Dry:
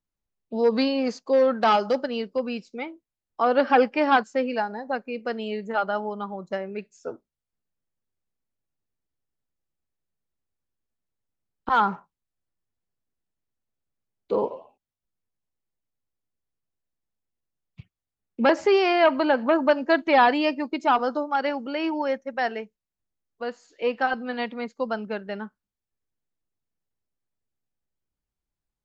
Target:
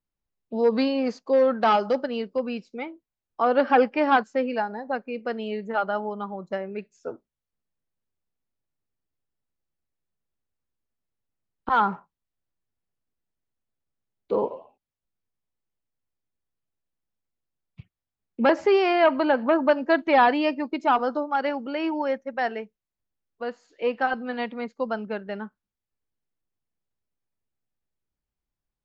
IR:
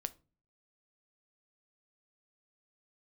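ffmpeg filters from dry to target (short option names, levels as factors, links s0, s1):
-af "highshelf=f=5600:g=-11.5"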